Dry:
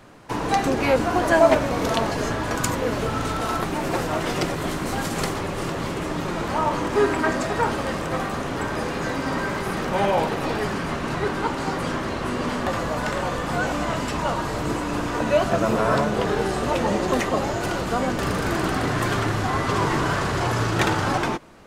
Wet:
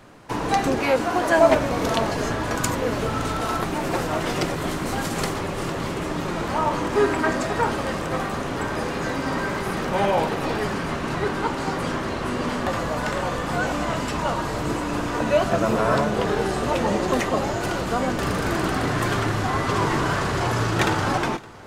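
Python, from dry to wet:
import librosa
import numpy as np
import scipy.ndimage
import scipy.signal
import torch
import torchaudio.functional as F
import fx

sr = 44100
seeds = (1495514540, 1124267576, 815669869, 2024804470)

y = fx.low_shelf(x, sr, hz=140.0, db=-11.0, at=(0.79, 1.38))
y = fx.echo_feedback(y, sr, ms=565, feedback_pct=58, wet_db=-23.0)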